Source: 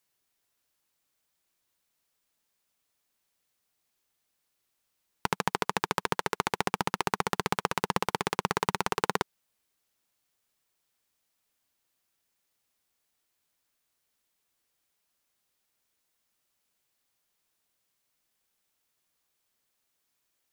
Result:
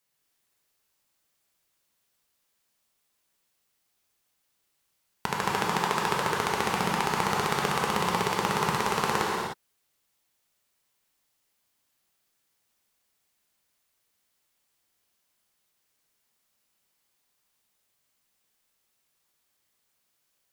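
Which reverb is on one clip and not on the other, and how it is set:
reverb whose tail is shaped and stops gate 330 ms flat, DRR −3.5 dB
level −1.5 dB

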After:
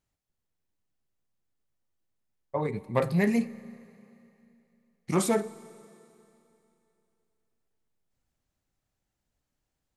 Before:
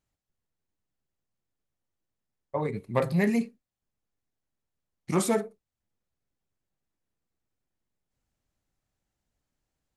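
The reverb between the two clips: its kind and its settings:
four-comb reverb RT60 2.9 s, combs from 30 ms, DRR 18 dB

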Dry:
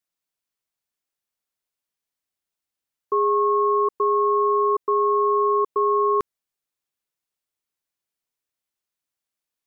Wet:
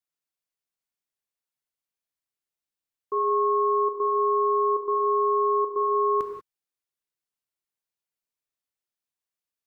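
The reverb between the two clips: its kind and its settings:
reverb whose tail is shaped and stops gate 210 ms flat, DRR 3.5 dB
level −7 dB

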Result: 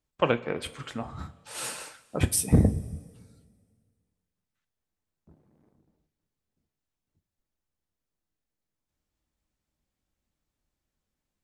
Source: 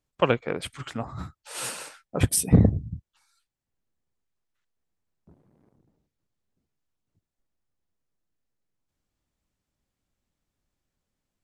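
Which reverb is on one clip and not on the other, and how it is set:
coupled-rooms reverb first 0.23 s, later 1.9 s, from −18 dB, DRR 8.5 dB
level −2.5 dB

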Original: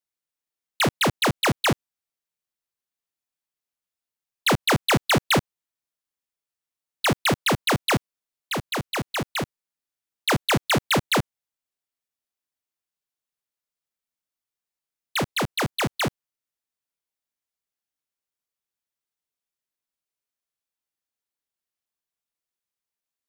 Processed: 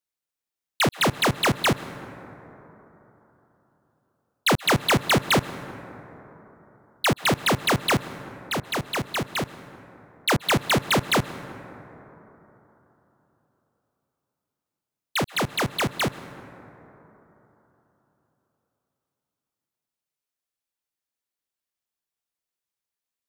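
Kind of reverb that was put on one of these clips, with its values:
dense smooth reverb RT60 3.8 s, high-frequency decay 0.3×, pre-delay 115 ms, DRR 14.5 dB

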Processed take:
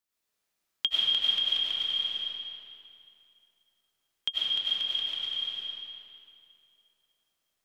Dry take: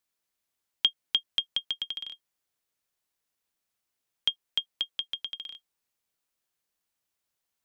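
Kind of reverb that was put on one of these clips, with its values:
comb and all-pass reverb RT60 2.6 s, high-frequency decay 0.8×, pre-delay 60 ms, DRR −8.5 dB
level −4.5 dB

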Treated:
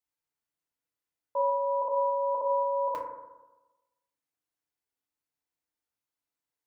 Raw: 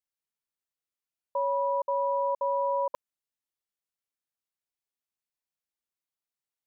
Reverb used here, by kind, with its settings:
feedback delay network reverb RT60 1.1 s, low-frequency decay 1×, high-frequency decay 0.25×, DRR −3.5 dB
level −2.5 dB

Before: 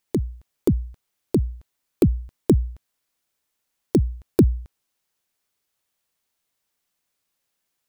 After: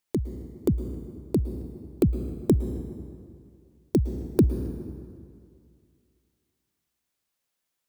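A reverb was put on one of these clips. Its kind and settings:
dense smooth reverb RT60 2.3 s, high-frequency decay 0.65×, pre-delay 100 ms, DRR 10 dB
level −4 dB

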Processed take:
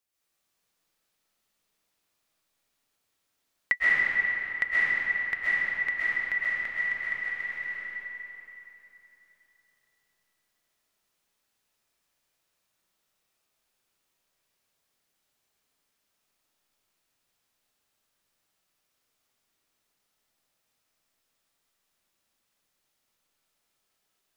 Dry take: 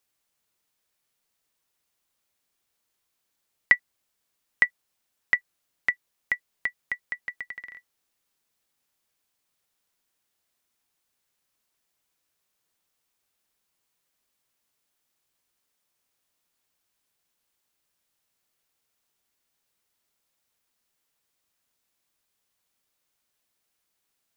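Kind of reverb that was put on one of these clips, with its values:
comb and all-pass reverb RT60 3.4 s, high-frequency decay 0.75×, pre-delay 90 ms, DRR −10 dB
level −7.5 dB

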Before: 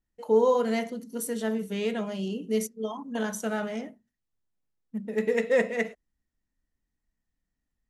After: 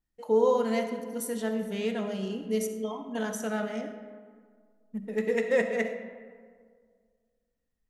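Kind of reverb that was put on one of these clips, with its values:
comb and all-pass reverb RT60 1.9 s, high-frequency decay 0.45×, pre-delay 25 ms, DRR 8 dB
level −2 dB

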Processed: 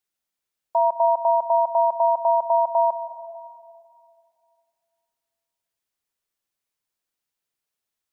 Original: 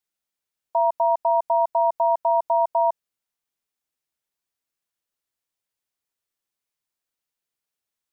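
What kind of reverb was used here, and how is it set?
comb and all-pass reverb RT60 2.4 s, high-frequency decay 0.4×, pre-delay 95 ms, DRR 11 dB
level +1 dB

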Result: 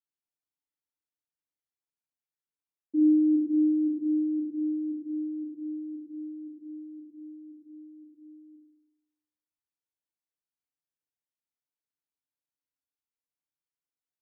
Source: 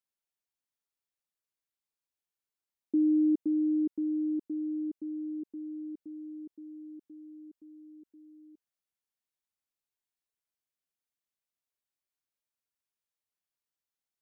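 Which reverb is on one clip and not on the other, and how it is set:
feedback delay network reverb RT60 0.63 s, low-frequency decay 1.55×, high-frequency decay 0.4×, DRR −6.5 dB
level −14.5 dB

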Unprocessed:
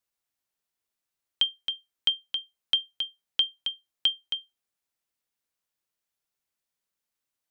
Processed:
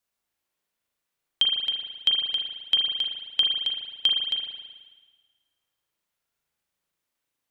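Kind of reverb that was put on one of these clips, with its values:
spring reverb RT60 1.4 s, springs 37 ms, chirp 30 ms, DRR −2 dB
level +2 dB

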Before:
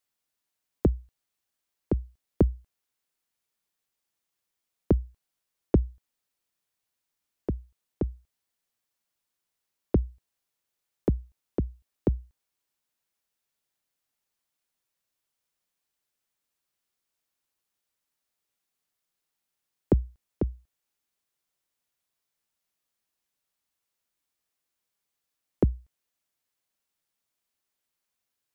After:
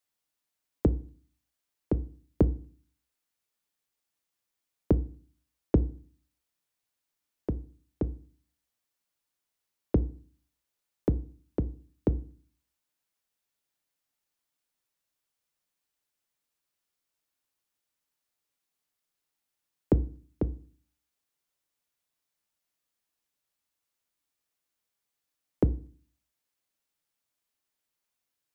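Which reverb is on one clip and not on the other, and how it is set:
feedback delay network reverb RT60 0.42 s, low-frequency decay 1.35×, high-frequency decay 0.9×, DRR 13.5 dB
level −1.5 dB

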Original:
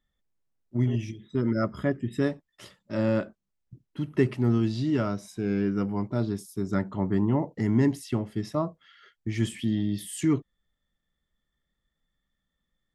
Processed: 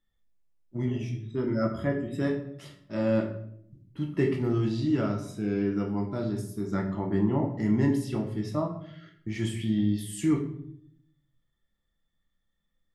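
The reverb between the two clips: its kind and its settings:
rectangular room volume 120 cubic metres, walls mixed, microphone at 0.73 metres
level −4 dB

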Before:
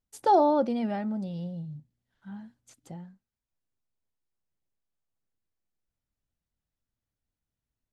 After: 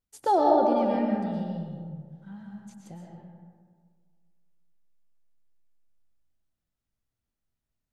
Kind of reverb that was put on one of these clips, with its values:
comb and all-pass reverb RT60 1.8 s, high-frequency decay 0.45×, pre-delay 80 ms, DRR −0.5 dB
level −2 dB

